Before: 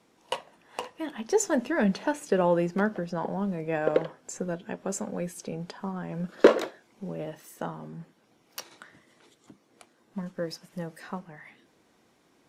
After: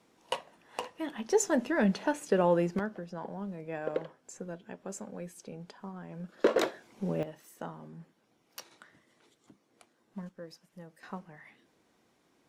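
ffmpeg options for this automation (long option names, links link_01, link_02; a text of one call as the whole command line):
ffmpeg -i in.wav -af "asetnsamples=nb_out_samples=441:pad=0,asendcmd='2.79 volume volume -9dB;6.56 volume volume 3.5dB;7.23 volume volume -6.5dB;10.29 volume volume -13dB;11.03 volume volume -5dB',volume=-2dB" out.wav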